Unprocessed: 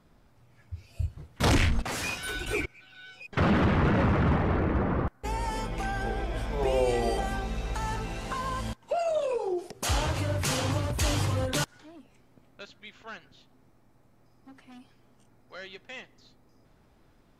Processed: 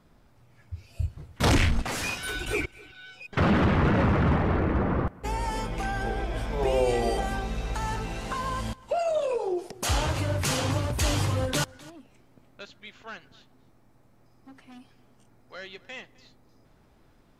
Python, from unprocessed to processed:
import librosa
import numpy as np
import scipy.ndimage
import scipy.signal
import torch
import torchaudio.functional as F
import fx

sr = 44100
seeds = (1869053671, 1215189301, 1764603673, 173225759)

y = x + 10.0 ** (-22.5 / 20.0) * np.pad(x, (int(259 * sr / 1000.0), 0))[:len(x)]
y = y * librosa.db_to_amplitude(1.5)